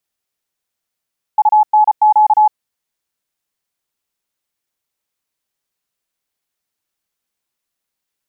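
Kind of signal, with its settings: Morse "UNQ" 34 wpm 852 Hz -6 dBFS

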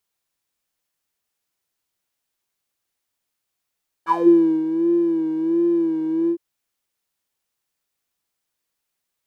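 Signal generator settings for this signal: synth patch with vibrato E4, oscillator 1 square, oscillator 2 level -17.5 dB, sub -8.5 dB, noise -7.5 dB, filter bandpass, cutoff 340 Hz, Q 12, filter envelope 2 oct, filter decay 0.20 s, filter sustain 5%, attack 37 ms, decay 0.54 s, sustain -9.5 dB, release 0.08 s, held 2.23 s, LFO 1.4 Hz, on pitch 68 cents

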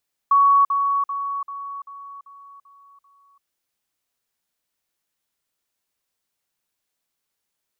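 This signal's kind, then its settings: level ladder 1120 Hz -11.5 dBFS, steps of -6 dB, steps 8, 0.34 s 0.05 s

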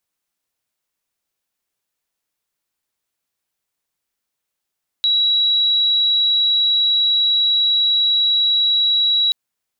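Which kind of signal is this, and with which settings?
tone sine 3890 Hz -13 dBFS 4.28 s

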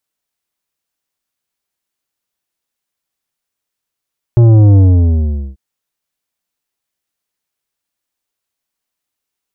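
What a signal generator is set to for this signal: sub drop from 120 Hz, over 1.19 s, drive 10 dB, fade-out 0.79 s, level -4.5 dB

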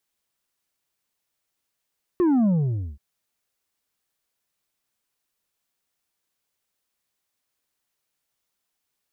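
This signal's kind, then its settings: sub drop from 370 Hz, over 0.78 s, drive 5 dB, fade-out 0.52 s, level -17 dB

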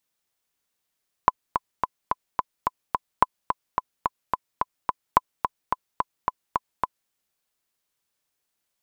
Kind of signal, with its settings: metronome 216 bpm, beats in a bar 7, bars 3, 1010 Hz, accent 7 dB -1.5 dBFS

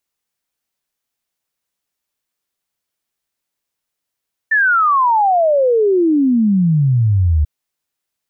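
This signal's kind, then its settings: log sweep 1800 Hz -> 72 Hz 2.94 s -10 dBFS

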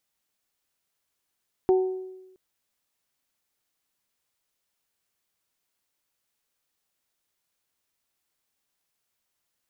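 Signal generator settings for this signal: glass hit bell, length 0.67 s, lowest mode 374 Hz, modes 3, decay 1.03 s, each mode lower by 11.5 dB, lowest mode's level -15 dB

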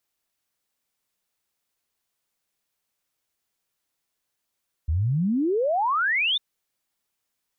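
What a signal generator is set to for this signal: log sweep 72 Hz -> 3700 Hz 1.50 s -20 dBFS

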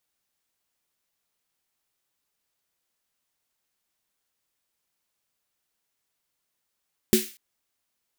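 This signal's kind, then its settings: snare drum length 0.24 s, tones 220 Hz, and 370 Hz, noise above 1900 Hz, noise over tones -6 dB, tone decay 0.20 s, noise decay 0.40 s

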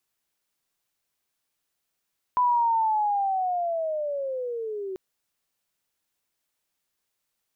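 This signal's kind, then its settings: chirp linear 1000 Hz -> 370 Hz -18 dBFS -> -30 dBFS 2.59 s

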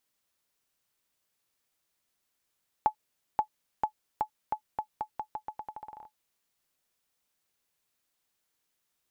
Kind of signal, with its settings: bouncing ball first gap 0.53 s, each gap 0.84, 857 Hz, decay 89 ms -13.5 dBFS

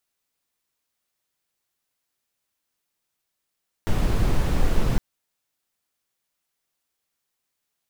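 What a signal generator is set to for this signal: noise brown, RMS -18.5 dBFS 1.11 s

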